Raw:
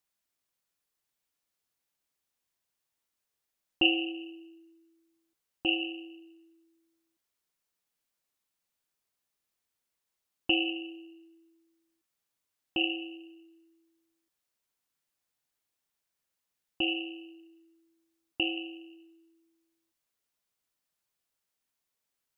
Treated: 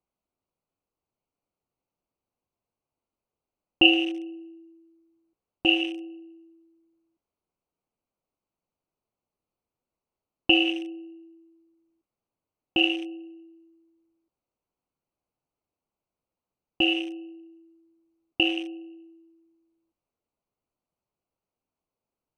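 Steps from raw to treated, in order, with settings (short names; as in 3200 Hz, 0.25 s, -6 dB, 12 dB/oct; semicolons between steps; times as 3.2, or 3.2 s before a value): Wiener smoothing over 25 samples; gain +7.5 dB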